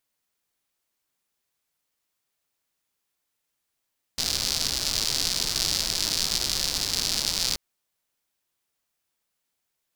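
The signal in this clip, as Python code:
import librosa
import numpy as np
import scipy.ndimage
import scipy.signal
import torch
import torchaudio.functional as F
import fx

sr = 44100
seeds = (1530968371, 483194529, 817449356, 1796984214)

y = fx.rain(sr, seeds[0], length_s=3.38, drops_per_s=170.0, hz=4700.0, bed_db=-9)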